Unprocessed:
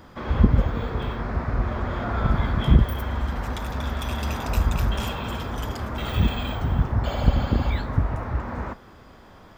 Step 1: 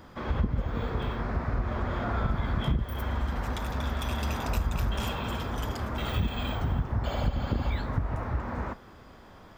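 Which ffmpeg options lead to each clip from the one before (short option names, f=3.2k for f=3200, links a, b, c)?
-af "acompressor=threshold=-21dB:ratio=5,volume=-2.5dB"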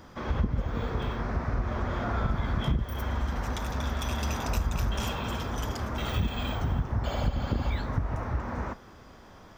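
-af "equalizer=f=5.9k:t=o:w=0.34:g=7.5"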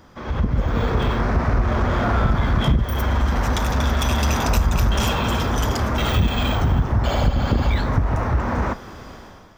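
-filter_complex "[0:a]dynaudnorm=f=120:g=7:m=12dB,asplit=2[a][b];[b]asoftclip=type=hard:threshold=-21dB,volume=-4dB[c];[a][c]amix=inputs=2:normalize=0,volume=-3.5dB"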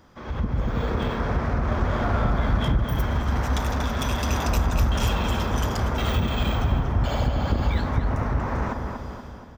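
-filter_complex "[0:a]asplit=2[a][b];[b]adelay=237,lowpass=f=1.7k:p=1,volume=-4dB,asplit=2[c][d];[d]adelay=237,lowpass=f=1.7k:p=1,volume=0.54,asplit=2[e][f];[f]adelay=237,lowpass=f=1.7k:p=1,volume=0.54,asplit=2[g][h];[h]adelay=237,lowpass=f=1.7k:p=1,volume=0.54,asplit=2[i][j];[j]adelay=237,lowpass=f=1.7k:p=1,volume=0.54,asplit=2[k][l];[l]adelay=237,lowpass=f=1.7k:p=1,volume=0.54,asplit=2[m][n];[n]adelay=237,lowpass=f=1.7k:p=1,volume=0.54[o];[a][c][e][g][i][k][m][o]amix=inputs=8:normalize=0,volume=-5.5dB"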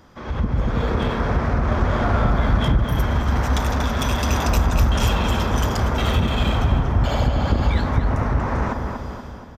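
-af "aresample=32000,aresample=44100,volume=4dB"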